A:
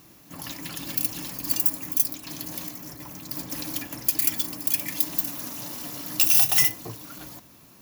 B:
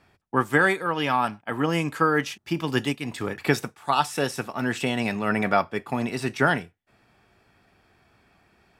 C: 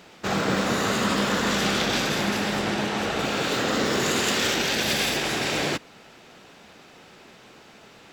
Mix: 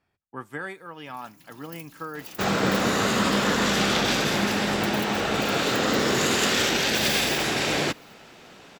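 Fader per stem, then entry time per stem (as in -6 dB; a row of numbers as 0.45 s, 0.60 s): -19.0 dB, -14.5 dB, +1.0 dB; 0.75 s, 0.00 s, 2.15 s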